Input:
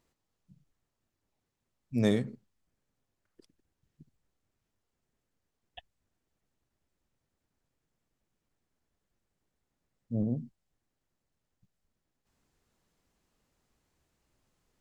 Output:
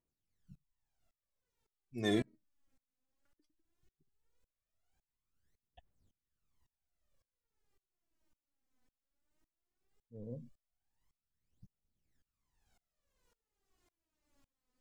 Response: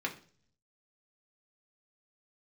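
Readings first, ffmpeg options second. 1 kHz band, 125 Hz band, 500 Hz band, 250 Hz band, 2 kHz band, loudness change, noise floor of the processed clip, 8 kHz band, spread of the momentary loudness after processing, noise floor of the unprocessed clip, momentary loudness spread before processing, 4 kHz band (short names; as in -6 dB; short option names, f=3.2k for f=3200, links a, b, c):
-1.0 dB, -11.0 dB, -6.0 dB, -8.0 dB, -1.0 dB, -7.0 dB, under -85 dBFS, n/a, 17 LU, -84 dBFS, 13 LU, 0.0 dB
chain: -af "aphaser=in_gain=1:out_gain=1:delay=4:decay=0.75:speed=0.17:type=triangular,aeval=exprs='val(0)*pow(10,-26*if(lt(mod(-1.8*n/s,1),2*abs(-1.8)/1000),1-mod(-1.8*n/s,1)/(2*abs(-1.8)/1000),(mod(-1.8*n/s,1)-2*abs(-1.8)/1000)/(1-2*abs(-1.8)/1000))/20)':c=same"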